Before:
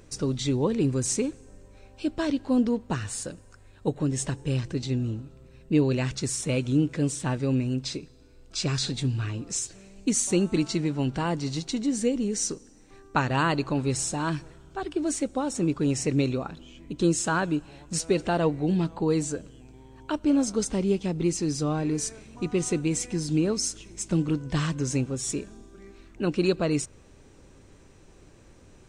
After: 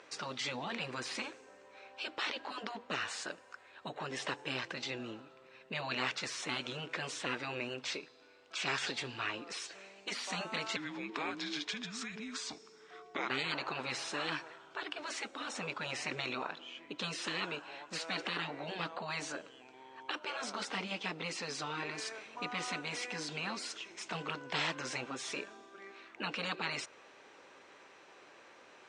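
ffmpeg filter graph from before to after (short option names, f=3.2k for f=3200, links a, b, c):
-filter_complex "[0:a]asettb=1/sr,asplit=3[a][b][c];[a]atrim=end=10.764[d];[b]atrim=start=10.76:end=13.3,asetpts=PTS-STARTPTS,afade=t=in:d=0.004:c=qsin,afade=t=out:st=2.536:d=0.004:c=qsin,acompressor=threshold=-28dB:ratio=4:attack=3.2:release=140:knee=1:detection=peak,afreqshift=-460[e];[c]atrim=start=13.296[f];[d][e]acrossfade=d=0.004:c1=hsin:c2=qsin[g];[g][f]acrossfade=d=0.004:c1=qsin:c2=hsin,highpass=770,afftfilt=real='re*lt(hypot(re,im),0.0447)':imag='im*lt(hypot(re,im),0.0447)':win_size=1024:overlap=0.75,lowpass=3.3k,volume=7dB"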